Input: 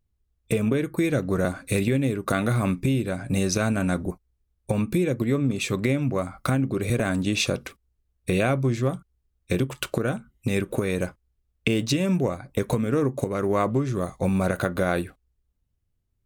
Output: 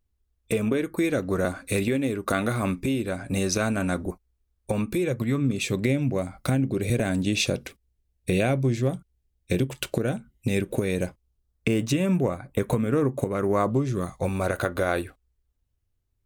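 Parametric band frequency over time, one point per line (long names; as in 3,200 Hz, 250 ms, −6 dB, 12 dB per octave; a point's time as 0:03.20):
parametric band −9 dB 0.62 octaves
0:04.90 140 Hz
0:05.65 1,200 Hz
0:11.02 1,200 Hz
0:11.99 5,100 Hz
0:13.38 5,100 Hz
0:13.88 1,300 Hz
0:14.29 180 Hz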